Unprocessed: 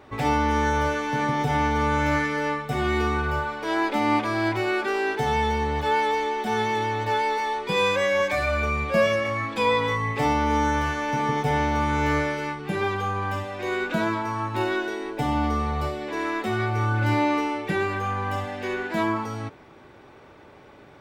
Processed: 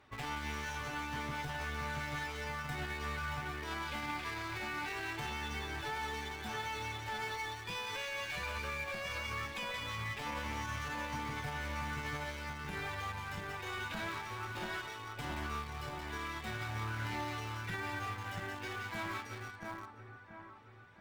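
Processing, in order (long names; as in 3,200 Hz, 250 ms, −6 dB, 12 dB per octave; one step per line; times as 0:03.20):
reverb reduction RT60 1.5 s
asymmetric clip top −30.5 dBFS
guitar amp tone stack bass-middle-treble 5-5-5
on a send: echo with a time of its own for lows and highs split 1,800 Hz, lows 679 ms, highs 176 ms, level −4 dB
on the sum: brickwall limiter −33.5 dBFS, peak gain reduction 8.5 dB
in parallel at −8.5 dB: bit reduction 7 bits
on the sum: high-shelf EQ 3,400 Hz −7 dB
level +2 dB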